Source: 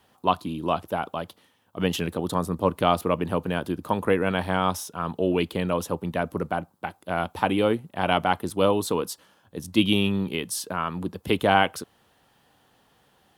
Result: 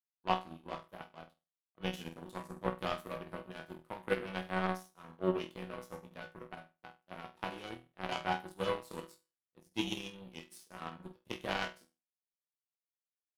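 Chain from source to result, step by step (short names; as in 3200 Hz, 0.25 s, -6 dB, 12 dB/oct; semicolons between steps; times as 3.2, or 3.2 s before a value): resonator bank B2 sus4, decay 0.53 s; power-law curve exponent 2; gain +10.5 dB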